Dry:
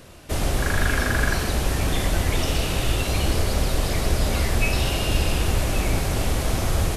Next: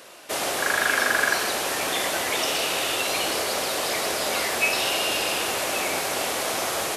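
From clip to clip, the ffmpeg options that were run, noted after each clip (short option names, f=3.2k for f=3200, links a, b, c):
-af "highpass=510,volume=4dB"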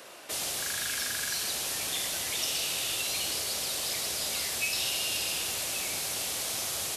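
-filter_complex "[0:a]acrossover=split=160|3000[a][b][c];[b]acompressor=threshold=-42dB:ratio=4[d];[a][d][c]amix=inputs=3:normalize=0,volume=-2dB"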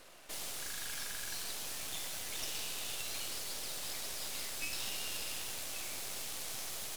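-af "aeval=exprs='max(val(0),0)':c=same,volume=-5dB"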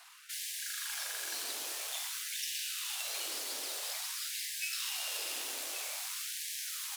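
-af "afftfilt=real='re*gte(b*sr/1024,230*pow(1600/230,0.5+0.5*sin(2*PI*0.5*pts/sr)))':imag='im*gte(b*sr/1024,230*pow(1600/230,0.5+0.5*sin(2*PI*0.5*pts/sr)))':win_size=1024:overlap=0.75,volume=3dB"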